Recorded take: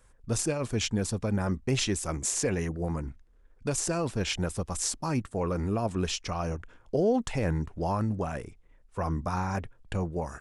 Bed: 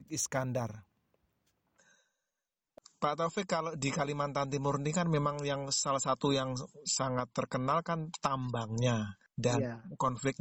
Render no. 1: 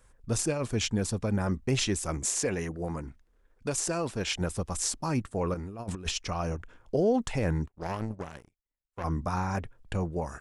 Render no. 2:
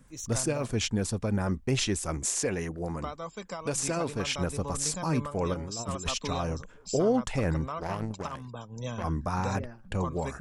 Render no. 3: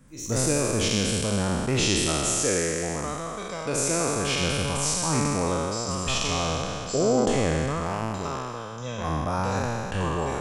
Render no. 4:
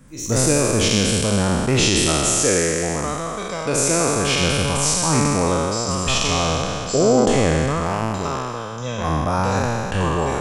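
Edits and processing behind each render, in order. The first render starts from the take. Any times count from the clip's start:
2.32–4.41 s: bass shelf 180 Hz -6.5 dB; 5.54–6.18 s: compressor with a negative ratio -34 dBFS, ratio -0.5; 7.67–9.04 s: power-law waveshaper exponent 2
add bed -6 dB
spectral sustain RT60 2.62 s
trim +6.5 dB; peak limiter -3 dBFS, peak gain reduction 3 dB

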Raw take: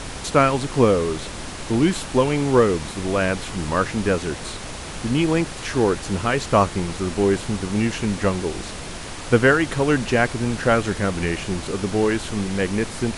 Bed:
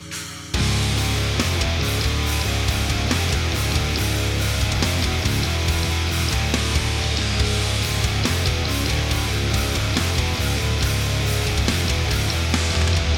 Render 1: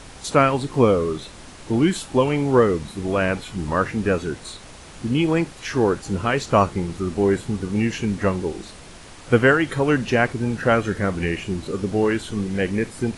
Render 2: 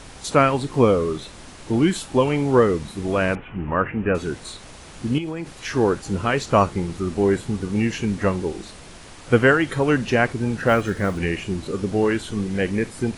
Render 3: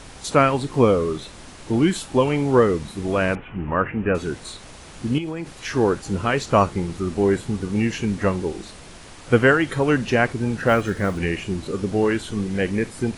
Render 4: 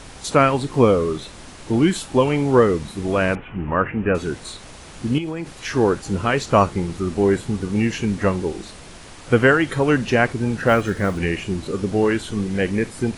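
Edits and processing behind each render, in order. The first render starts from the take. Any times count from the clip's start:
noise print and reduce 9 dB
3.35–4.15 s: elliptic low-pass 2.8 kHz; 5.18–5.62 s: compression 12:1, threshold -24 dBFS; 10.67–11.19 s: block-companded coder 7-bit
no audible change
trim +1.5 dB; peak limiter -3 dBFS, peak gain reduction 1.5 dB

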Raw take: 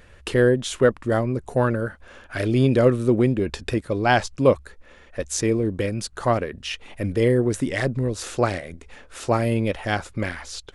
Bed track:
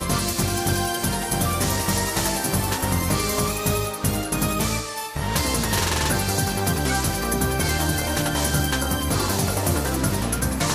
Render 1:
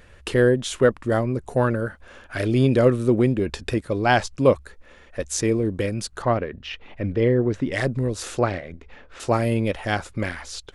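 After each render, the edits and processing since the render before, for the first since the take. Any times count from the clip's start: 6.22–7.72 s: distance through air 210 m; 8.39–9.20 s: distance through air 170 m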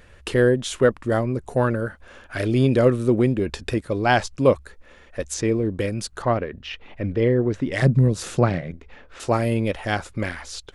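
5.34–5.79 s: distance through air 69 m; 7.82–8.71 s: peaking EQ 160 Hz +14.5 dB 0.87 oct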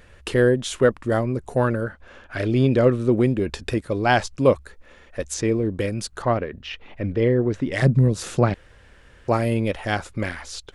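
1.84–3.12 s: distance through air 61 m; 8.54–9.28 s: room tone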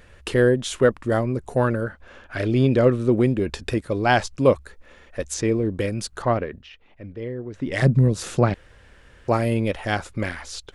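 6.50–7.71 s: dip -12 dB, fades 0.19 s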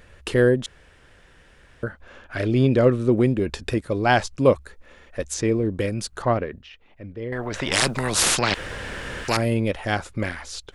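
0.66–1.83 s: room tone; 7.32–9.37 s: spectrum-flattening compressor 4:1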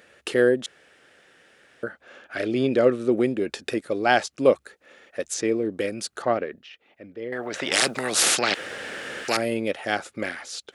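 high-pass 280 Hz 12 dB/octave; peaking EQ 1 kHz -10 dB 0.2 oct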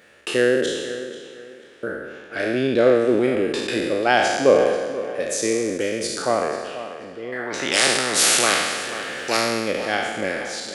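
spectral sustain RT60 1.36 s; tape echo 487 ms, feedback 31%, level -12 dB, low-pass 4.4 kHz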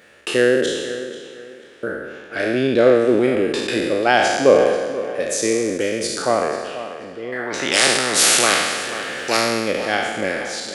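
trim +2.5 dB; peak limiter -1 dBFS, peak gain reduction 1 dB

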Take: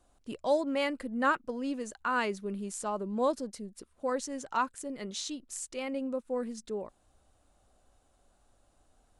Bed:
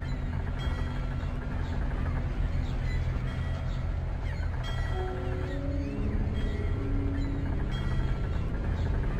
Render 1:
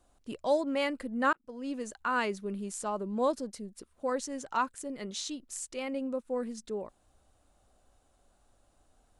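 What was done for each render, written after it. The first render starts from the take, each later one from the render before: 1.33–1.80 s: fade in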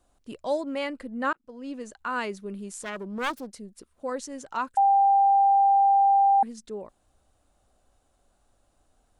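0.79–1.99 s: treble shelf 9.4 kHz -9 dB; 2.83–3.47 s: self-modulated delay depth 0.59 ms; 4.77–6.43 s: bleep 792 Hz -16 dBFS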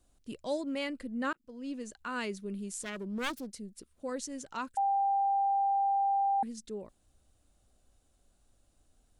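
peaking EQ 910 Hz -9.5 dB 2.1 oct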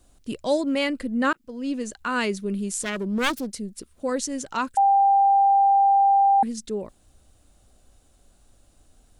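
trim +11 dB

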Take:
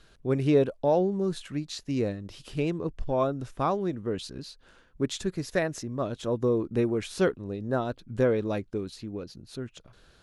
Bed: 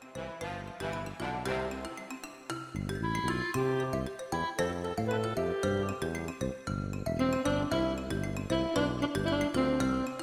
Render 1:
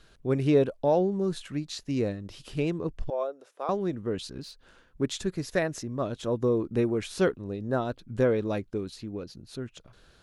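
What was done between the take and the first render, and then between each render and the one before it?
3.10–3.69 s: ladder high-pass 420 Hz, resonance 50%; 4.29–5.02 s: self-modulated delay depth 0.091 ms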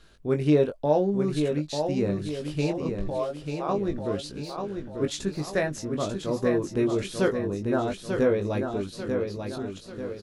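doubling 20 ms -5.5 dB; feedback delay 891 ms, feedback 44%, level -6 dB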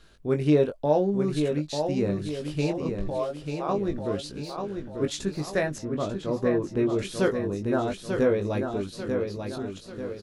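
5.78–6.99 s: treble shelf 4.7 kHz -11 dB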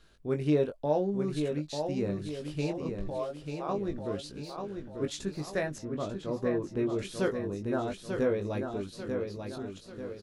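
trim -5.5 dB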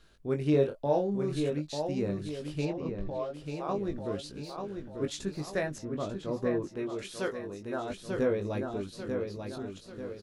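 0.51–1.50 s: doubling 29 ms -6 dB; 2.65–3.34 s: distance through air 120 m; 6.68–7.90 s: bass shelf 340 Hz -10.5 dB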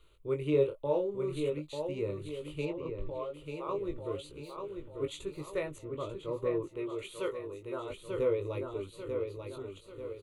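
static phaser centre 1.1 kHz, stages 8

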